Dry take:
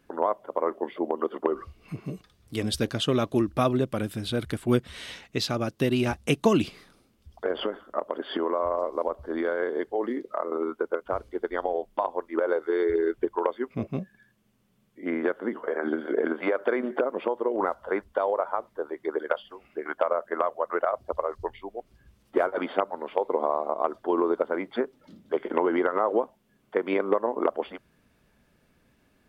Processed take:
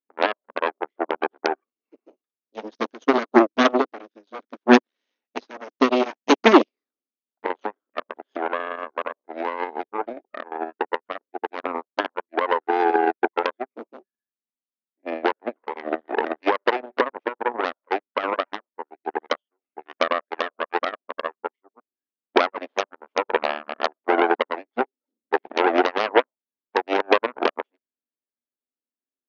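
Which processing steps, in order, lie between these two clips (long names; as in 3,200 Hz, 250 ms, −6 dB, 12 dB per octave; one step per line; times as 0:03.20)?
tilt shelving filter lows +4.5 dB, about 880 Hz
harmonic generator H 5 −17 dB, 7 −17 dB, 8 −7 dB, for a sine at −6.5 dBFS
linear-phase brick-wall band-pass 220–6,700 Hz
expander for the loud parts 2.5 to 1, over −38 dBFS
level +5 dB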